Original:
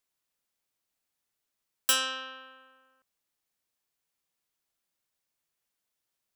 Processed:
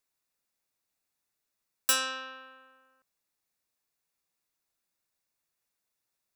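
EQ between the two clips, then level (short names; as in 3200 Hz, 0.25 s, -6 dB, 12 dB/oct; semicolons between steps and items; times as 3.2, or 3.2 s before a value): notch 3100 Hz, Q 7.7; 0.0 dB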